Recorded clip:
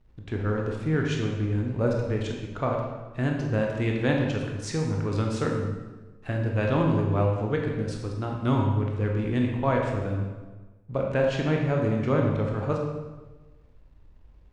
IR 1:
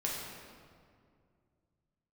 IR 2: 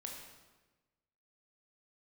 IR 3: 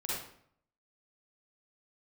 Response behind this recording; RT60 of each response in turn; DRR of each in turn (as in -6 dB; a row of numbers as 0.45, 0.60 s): 2; 2.2, 1.2, 0.65 s; -4.5, -0.5, -7.5 dB